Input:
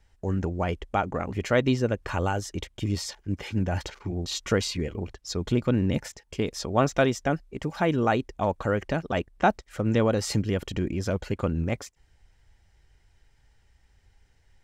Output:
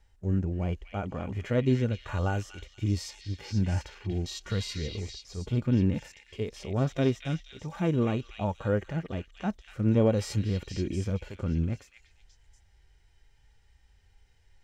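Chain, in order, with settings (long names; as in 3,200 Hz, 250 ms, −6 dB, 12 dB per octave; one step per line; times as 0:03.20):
harmonic and percussive parts rebalanced percussive −18 dB
echo through a band-pass that steps 239 ms, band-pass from 2,800 Hz, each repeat 0.7 octaves, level −2 dB
level +1.5 dB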